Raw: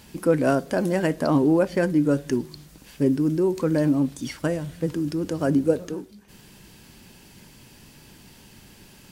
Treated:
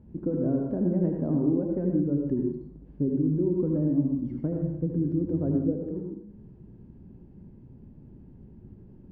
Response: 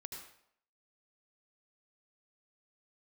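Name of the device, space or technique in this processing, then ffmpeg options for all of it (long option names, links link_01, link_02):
television next door: -filter_complex "[0:a]acompressor=threshold=-21dB:ratio=6,lowpass=320[link_01];[1:a]atrim=start_sample=2205[link_02];[link_01][link_02]afir=irnorm=-1:irlink=0,volume=6.5dB"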